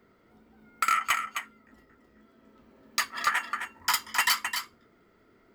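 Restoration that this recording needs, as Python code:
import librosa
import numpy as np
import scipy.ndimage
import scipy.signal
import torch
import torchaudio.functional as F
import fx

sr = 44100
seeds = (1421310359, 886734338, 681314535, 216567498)

y = fx.fix_declip(x, sr, threshold_db=-16.0)
y = fx.fix_echo_inverse(y, sr, delay_ms=262, level_db=-8.0)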